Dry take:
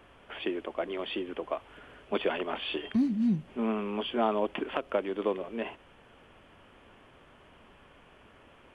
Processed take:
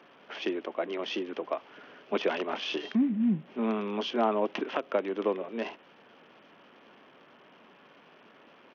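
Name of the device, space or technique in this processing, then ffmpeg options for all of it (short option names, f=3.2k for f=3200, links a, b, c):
Bluetooth headset: -af "highpass=f=170:w=0.5412,highpass=f=170:w=1.3066,aresample=8000,aresample=44100,volume=1dB" -ar 48000 -c:a sbc -b:a 64k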